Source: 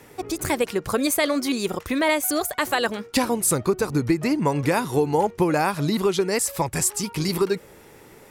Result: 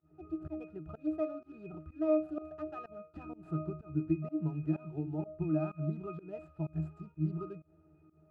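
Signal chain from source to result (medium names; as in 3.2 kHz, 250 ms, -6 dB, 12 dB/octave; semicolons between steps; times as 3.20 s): median filter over 15 samples; pitch-class resonator D#, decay 0.3 s; volume shaper 126 bpm, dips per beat 1, -24 dB, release 137 ms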